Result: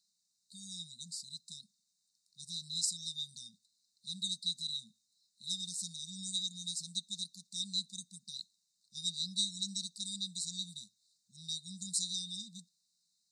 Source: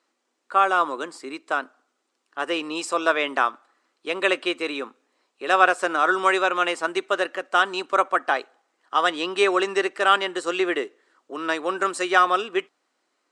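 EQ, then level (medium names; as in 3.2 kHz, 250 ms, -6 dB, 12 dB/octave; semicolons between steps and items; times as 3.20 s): brick-wall FIR band-stop 210–3600 Hz; +1.5 dB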